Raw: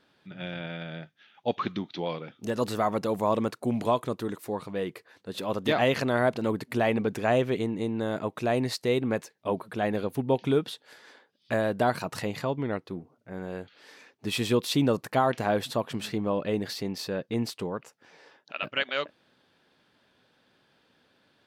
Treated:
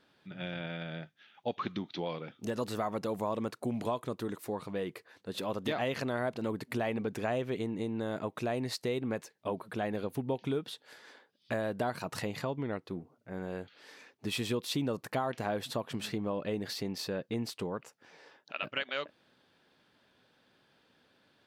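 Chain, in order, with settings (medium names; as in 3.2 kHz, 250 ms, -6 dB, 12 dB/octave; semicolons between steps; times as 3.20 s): compression 2.5:1, threshold -30 dBFS, peak gain reduction 8 dB; trim -2 dB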